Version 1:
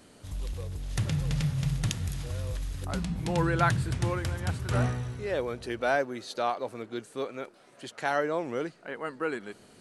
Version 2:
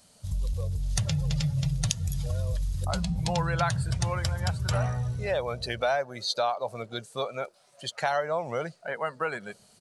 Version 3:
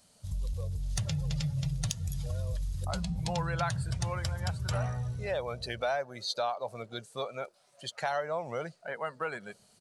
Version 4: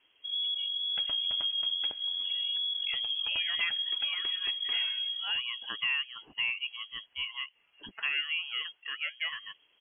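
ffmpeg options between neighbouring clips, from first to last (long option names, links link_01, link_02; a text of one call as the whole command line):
ffmpeg -i in.wav -af "afftdn=noise_reduction=15:noise_floor=-42,firequalizer=gain_entry='entry(160,0);entry(290,-17);entry(600,3);entry(1700,-2);entry(4700,10)':delay=0.05:min_phase=1,acompressor=threshold=-34dB:ratio=3,volume=8dB" out.wav
ffmpeg -i in.wav -af "asoftclip=type=tanh:threshold=-11dB,volume=-4.5dB" out.wav
ffmpeg -i in.wav -af "lowpass=frequency=2900:width_type=q:width=0.5098,lowpass=frequency=2900:width_type=q:width=0.6013,lowpass=frequency=2900:width_type=q:width=0.9,lowpass=frequency=2900:width_type=q:width=2.563,afreqshift=-3400" out.wav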